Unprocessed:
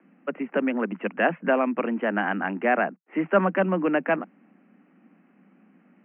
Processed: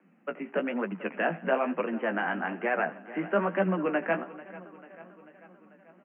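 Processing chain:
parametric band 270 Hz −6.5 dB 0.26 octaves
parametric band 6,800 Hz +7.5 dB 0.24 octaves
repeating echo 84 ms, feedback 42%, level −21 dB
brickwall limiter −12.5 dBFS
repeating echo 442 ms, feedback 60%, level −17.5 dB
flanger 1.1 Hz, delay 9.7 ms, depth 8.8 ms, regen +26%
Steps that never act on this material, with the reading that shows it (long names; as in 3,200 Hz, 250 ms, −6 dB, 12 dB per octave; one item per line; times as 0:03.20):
parametric band 6,800 Hz: nothing at its input above 2,900 Hz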